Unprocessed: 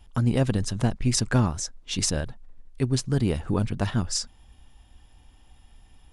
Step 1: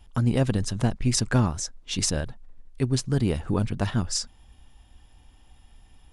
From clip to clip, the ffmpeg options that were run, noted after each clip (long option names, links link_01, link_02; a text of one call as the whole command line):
ffmpeg -i in.wav -af anull out.wav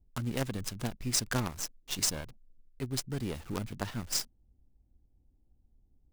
ffmpeg -i in.wav -filter_complex "[0:a]lowshelf=frequency=400:gain=-10,acrossover=split=430[link_01][link_02];[link_02]acrusher=bits=5:dc=4:mix=0:aa=0.000001[link_03];[link_01][link_03]amix=inputs=2:normalize=0,volume=-3.5dB" out.wav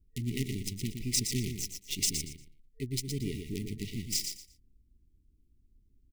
ffmpeg -i in.wav -filter_complex "[0:a]afftfilt=real='re*(1-between(b*sr/4096,450,1900))':imag='im*(1-between(b*sr/4096,450,1900))':win_size=4096:overlap=0.75,asplit=2[link_01][link_02];[link_02]aecho=0:1:117|234|351:0.473|0.104|0.0229[link_03];[link_01][link_03]amix=inputs=2:normalize=0" out.wav